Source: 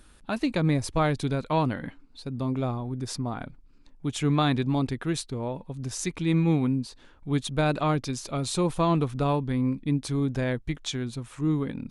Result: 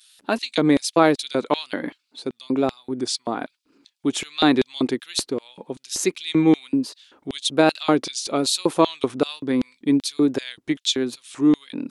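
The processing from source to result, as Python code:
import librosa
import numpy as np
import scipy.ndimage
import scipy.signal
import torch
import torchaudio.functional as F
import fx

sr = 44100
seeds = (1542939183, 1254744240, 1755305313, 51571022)

y = fx.vibrato(x, sr, rate_hz=1.2, depth_cents=66.0)
y = fx.filter_lfo_highpass(y, sr, shape='square', hz=2.6, low_hz=330.0, high_hz=3600.0, q=1.9)
y = y * librosa.db_to_amplitude(7.0)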